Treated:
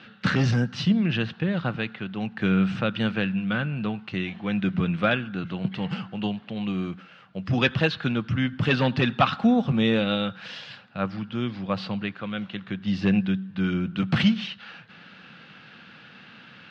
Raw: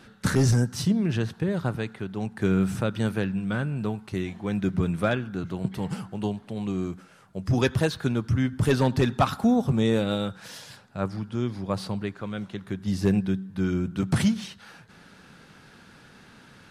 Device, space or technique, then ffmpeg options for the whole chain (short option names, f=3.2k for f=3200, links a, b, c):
kitchen radio: -af "highpass=170,equalizer=f=280:t=q:w=4:g=-5,equalizer=f=400:t=q:w=4:g=-10,equalizer=f=630:t=q:w=4:g=-4,equalizer=f=930:t=q:w=4:g=-6,equalizer=f=2.8k:t=q:w=4:g=7,lowpass=f=4.1k:w=0.5412,lowpass=f=4.1k:w=1.3066,volume=5dB"